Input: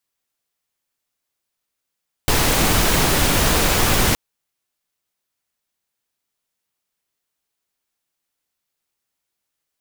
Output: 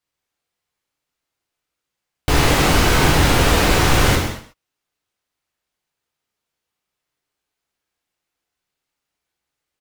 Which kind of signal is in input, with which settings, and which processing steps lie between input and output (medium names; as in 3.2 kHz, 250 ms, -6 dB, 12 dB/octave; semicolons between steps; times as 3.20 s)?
noise pink, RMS -16.5 dBFS 1.87 s
low-pass 3.6 kHz 6 dB/octave; delay 128 ms -13.5 dB; gated-style reverb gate 270 ms falling, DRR -1 dB